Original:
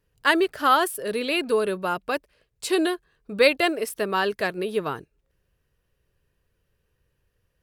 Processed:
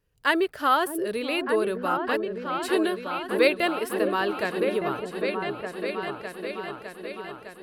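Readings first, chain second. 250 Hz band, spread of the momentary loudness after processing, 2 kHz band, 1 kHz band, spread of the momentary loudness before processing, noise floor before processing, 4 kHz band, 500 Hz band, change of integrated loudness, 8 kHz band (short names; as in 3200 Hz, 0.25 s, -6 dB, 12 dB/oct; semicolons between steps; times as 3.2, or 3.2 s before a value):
0.0 dB, 12 LU, -2.0 dB, -1.0 dB, 11 LU, -74 dBFS, -3.5 dB, -0.5 dB, -2.5 dB, -5.5 dB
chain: dynamic EQ 6500 Hz, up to -7 dB, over -44 dBFS, Q 1.1; repeats that get brighter 0.607 s, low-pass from 400 Hz, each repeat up 2 oct, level -3 dB; gain -2.5 dB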